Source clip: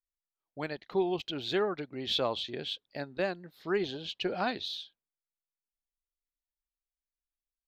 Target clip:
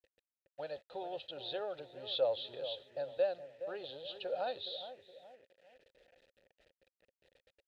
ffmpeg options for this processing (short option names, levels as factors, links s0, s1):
-filter_complex "[0:a]aeval=exprs='val(0)+0.5*0.00841*sgn(val(0))':c=same,aemphasis=mode=reproduction:type=75fm,acrossover=split=350|3000[s0][s1][s2];[s0]acompressor=threshold=0.0158:ratio=6[s3];[s3][s1][s2]amix=inputs=3:normalize=0,firequalizer=gain_entry='entry(100,0);entry(190,-18);entry(390,-22);entry(560,-13);entry(870,-3);entry(1300,-6);entry(1900,-29);entry(3800,2);entry(6000,-15)':delay=0.05:min_phase=1,acontrast=89,agate=range=0.00891:threshold=0.00708:ratio=16:detection=peak,asplit=2[s4][s5];[s5]adelay=418,lowpass=f=820:p=1,volume=0.335,asplit=2[s6][s7];[s7]adelay=418,lowpass=f=820:p=1,volume=0.48,asplit=2[s8][s9];[s9]adelay=418,lowpass=f=820:p=1,volume=0.48,asplit=2[s10][s11];[s11]adelay=418,lowpass=f=820:p=1,volume=0.48,asplit=2[s12][s13];[s13]adelay=418,lowpass=f=820:p=1,volume=0.48[s14];[s6][s8][s10][s12][s14]amix=inputs=5:normalize=0[s15];[s4][s15]amix=inputs=2:normalize=0,acrusher=bits=9:mix=0:aa=0.000001,asplit=3[s16][s17][s18];[s16]bandpass=f=530:t=q:w=8,volume=1[s19];[s17]bandpass=f=1840:t=q:w=8,volume=0.501[s20];[s18]bandpass=f=2480:t=q:w=8,volume=0.355[s21];[s19][s20][s21]amix=inputs=3:normalize=0,volume=3.35"